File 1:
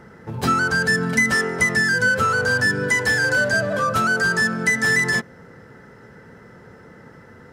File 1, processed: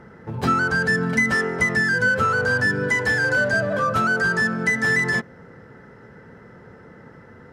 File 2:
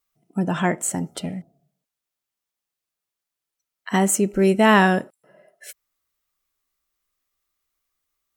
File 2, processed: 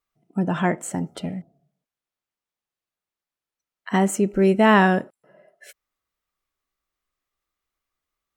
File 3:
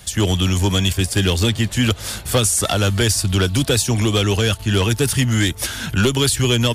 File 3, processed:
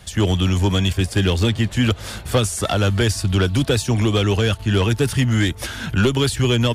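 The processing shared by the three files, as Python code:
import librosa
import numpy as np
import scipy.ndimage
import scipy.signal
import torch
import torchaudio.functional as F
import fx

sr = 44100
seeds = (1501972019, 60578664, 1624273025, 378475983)

y = fx.high_shelf(x, sr, hz=4600.0, db=-11.0)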